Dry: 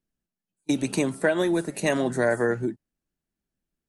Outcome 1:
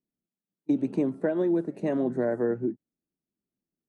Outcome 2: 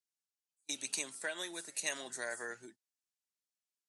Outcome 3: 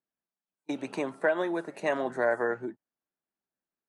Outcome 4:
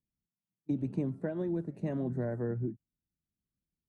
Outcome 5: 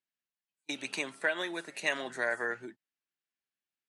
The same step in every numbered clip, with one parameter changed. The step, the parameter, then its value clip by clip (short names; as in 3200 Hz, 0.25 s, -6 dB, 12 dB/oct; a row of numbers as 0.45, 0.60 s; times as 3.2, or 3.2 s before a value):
band-pass, frequency: 290, 6500, 960, 100, 2500 Hz